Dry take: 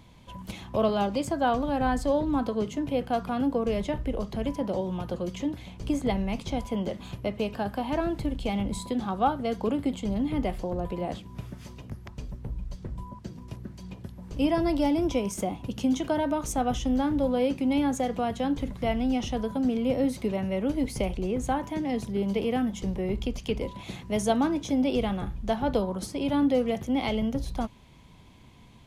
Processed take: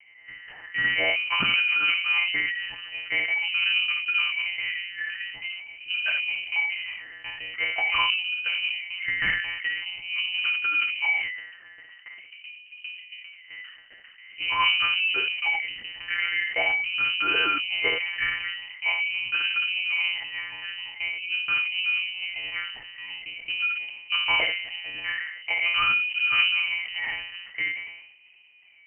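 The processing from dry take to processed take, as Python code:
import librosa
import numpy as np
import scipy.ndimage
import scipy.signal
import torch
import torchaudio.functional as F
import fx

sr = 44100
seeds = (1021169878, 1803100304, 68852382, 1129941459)

p1 = fx.wah_lfo(x, sr, hz=0.45, low_hz=510.0, high_hz=1200.0, q=13.0)
p2 = fx.fold_sine(p1, sr, drive_db=17, ceiling_db=-19.0)
p3 = p1 + F.gain(torch.from_numpy(p2), -4.5).numpy()
p4 = fx.doubler(p3, sr, ms=29.0, db=-7.0)
p5 = fx.room_early_taps(p4, sr, ms=(26, 64), db=(-13.5, -5.5))
p6 = fx.lpc_monotone(p5, sr, seeds[0], pitch_hz=180.0, order=10)
p7 = fx.freq_invert(p6, sr, carrier_hz=3000)
y = fx.sustainer(p7, sr, db_per_s=58.0)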